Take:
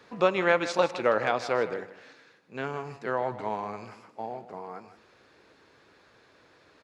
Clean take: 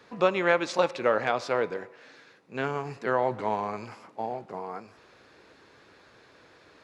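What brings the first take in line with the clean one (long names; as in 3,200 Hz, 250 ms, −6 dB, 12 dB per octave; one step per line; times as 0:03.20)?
echo removal 157 ms −13.5 dB
level 0 dB, from 0:02.13 +3.5 dB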